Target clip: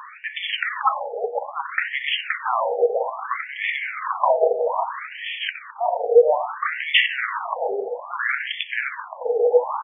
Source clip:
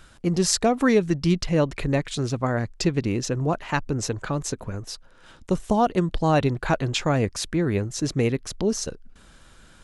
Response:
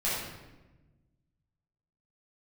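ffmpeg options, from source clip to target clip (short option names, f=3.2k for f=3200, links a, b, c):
-filter_complex "[0:a]afreqshift=-500,dynaudnorm=f=320:g=3:m=13.5dB,aresample=8000,aresample=44100,highpass=110,aecho=1:1:522:0.447,asplit=2[a][b];[1:a]atrim=start_sample=2205,lowshelf=f=200:g=11.5[c];[b][c]afir=irnorm=-1:irlink=0,volume=-12.5dB[d];[a][d]amix=inputs=2:normalize=0,alimiter=level_in=20.5dB:limit=-1dB:release=50:level=0:latency=1,afftfilt=real='re*between(b*sr/1024,580*pow(2500/580,0.5+0.5*sin(2*PI*0.61*pts/sr))/1.41,580*pow(2500/580,0.5+0.5*sin(2*PI*0.61*pts/sr))*1.41)':imag='im*between(b*sr/1024,580*pow(2500/580,0.5+0.5*sin(2*PI*0.61*pts/sr))/1.41,580*pow(2500/580,0.5+0.5*sin(2*PI*0.61*pts/sr))*1.41)':win_size=1024:overlap=0.75"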